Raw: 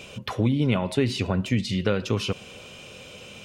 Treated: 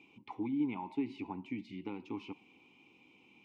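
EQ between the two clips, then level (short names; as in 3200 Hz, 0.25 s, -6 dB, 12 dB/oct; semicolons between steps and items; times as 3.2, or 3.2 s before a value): vowel filter u; dynamic EQ 870 Hz, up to +7 dB, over -54 dBFS, Q 1.3; -4.5 dB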